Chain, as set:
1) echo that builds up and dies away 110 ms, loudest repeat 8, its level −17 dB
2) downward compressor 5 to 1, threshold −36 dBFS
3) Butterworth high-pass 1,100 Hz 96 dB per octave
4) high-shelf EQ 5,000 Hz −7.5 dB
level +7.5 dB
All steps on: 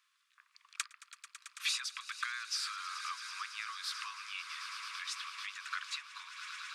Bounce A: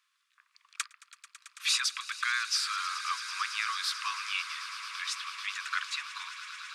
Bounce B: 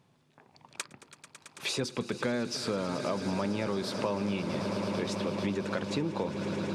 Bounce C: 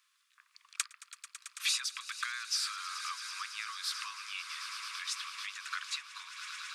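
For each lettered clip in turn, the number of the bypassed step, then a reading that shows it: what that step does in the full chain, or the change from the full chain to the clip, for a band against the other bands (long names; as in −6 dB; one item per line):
2, average gain reduction 6.5 dB
3, 1 kHz band +5.5 dB
4, 8 kHz band +4.0 dB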